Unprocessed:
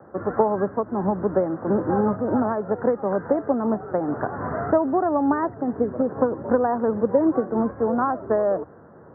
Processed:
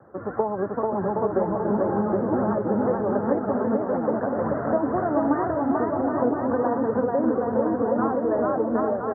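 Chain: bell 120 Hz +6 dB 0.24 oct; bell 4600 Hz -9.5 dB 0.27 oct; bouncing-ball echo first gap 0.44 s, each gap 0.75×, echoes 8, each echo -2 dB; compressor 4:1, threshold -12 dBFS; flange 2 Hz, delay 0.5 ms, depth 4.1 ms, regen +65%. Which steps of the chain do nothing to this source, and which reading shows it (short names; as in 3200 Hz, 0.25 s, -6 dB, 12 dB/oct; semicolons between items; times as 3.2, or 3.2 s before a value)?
bell 4600 Hz: input band ends at 1700 Hz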